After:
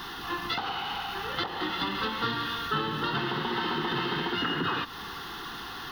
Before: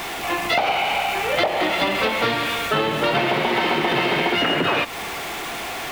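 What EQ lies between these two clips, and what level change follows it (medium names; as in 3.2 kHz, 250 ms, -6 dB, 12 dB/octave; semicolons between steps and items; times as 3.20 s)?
treble shelf 9.1 kHz -7.5 dB; static phaser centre 2.3 kHz, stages 6; -5.0 dB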